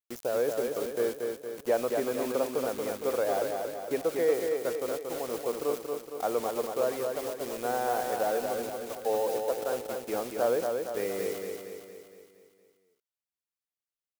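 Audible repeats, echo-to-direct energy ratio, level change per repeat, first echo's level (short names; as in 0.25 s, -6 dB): 6, -3.0 dB, -5.5 dB, -4.5 dB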